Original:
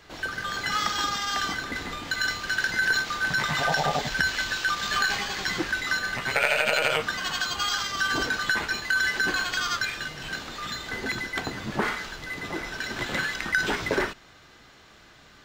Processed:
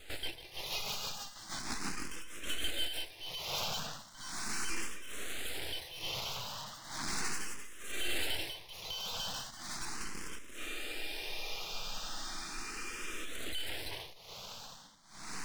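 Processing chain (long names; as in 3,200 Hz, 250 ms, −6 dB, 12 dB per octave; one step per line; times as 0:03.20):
loose part that buzzes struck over −42 dBFS, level −20 dBFS
tube saturation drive 32 dB, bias 0.65
Butterworth high-pass 410 Hz 72 dB per octave
on a send: feedback delay with all-pass diffusion 1,735 ms, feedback 44%, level −13 dB
on the sum: amplitude tremolo 1.1 Hz, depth 90%
downward compressor 4 to 1, threshold −40 dBFS, peak gain reduction 8 dB
rotating-speaker cabinet horn 6.3 Hz, later 0.85 Hz, at 0:02.75
full-wave rectification
frozen spectrum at 0:10.60, 2.65 s
frequency shifter mixed with the dry sound +0.37 Hz
level +13.5 dB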